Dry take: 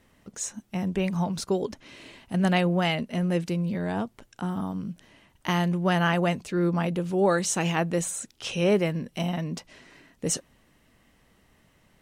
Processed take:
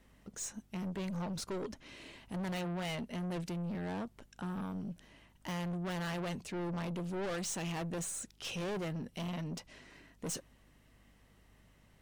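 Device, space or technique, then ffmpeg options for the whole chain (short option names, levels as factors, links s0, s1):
valve amplifier with mains hum: -af "aeval=exprs='(tanh(35.5*val(0)+0.2)-tanh(0.2))/35.5':c=same,aeval=exprs='val(0)+0.000891*(sin(2*PI*50*n/s)+sin(2*PI*2*50*n/s)/2+sin(2*PI*3*50*n/s)/3+sin(2*PI*4*50*n/s)/4+sin(2*PI*5*50*n/s)/5)':c=same,volume=0.596"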